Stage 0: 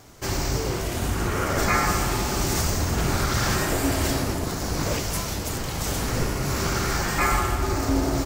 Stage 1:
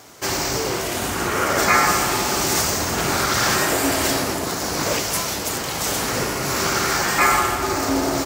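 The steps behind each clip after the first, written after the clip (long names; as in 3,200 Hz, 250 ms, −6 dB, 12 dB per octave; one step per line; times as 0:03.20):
high-pass filter 400 Hz 6 dB per octave
level +7 dB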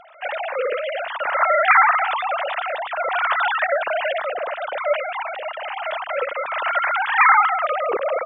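three sine waves on the formant tracks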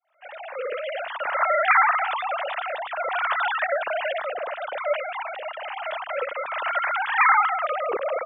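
fade in at the beginning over 0.91 s
level −4 dB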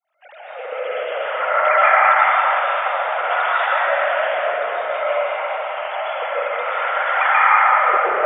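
dense smooth reverb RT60 3.9 s, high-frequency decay 0.55×, pre-delay 115 ms, DRR −9.5 dB
level −3.5 dB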